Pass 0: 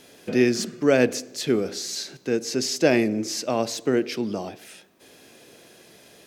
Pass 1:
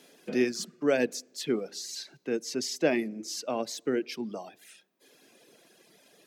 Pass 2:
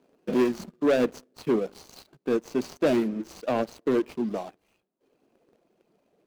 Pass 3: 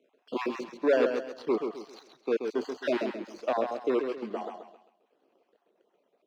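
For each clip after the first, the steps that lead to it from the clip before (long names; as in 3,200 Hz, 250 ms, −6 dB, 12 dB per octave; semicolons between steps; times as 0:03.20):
high-pass filter 150 Hz 24 dB per octave; reverb reduction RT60 1.3 s; level −6 dB
running median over 25 samples; leveller curve on the samples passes 2
time-frequency cells dropped at random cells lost 38%; three-way crossover with the lows and the highs turned down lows −20 dB, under 300 Hz, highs −18 dB, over 5,200 Hz; feedback echo with a swinging delay time 133 ms, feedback 34%, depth 78 cents, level −6 dB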